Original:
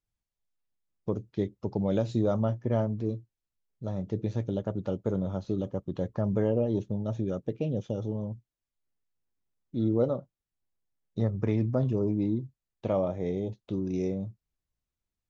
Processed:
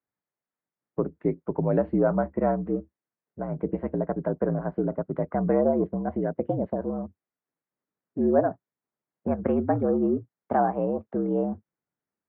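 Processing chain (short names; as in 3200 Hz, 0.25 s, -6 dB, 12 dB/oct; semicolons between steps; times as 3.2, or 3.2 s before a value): speed glide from 109% -> 140%; mistuned SSB -61 Hz 220–2100 Hz; gain +5.5 dB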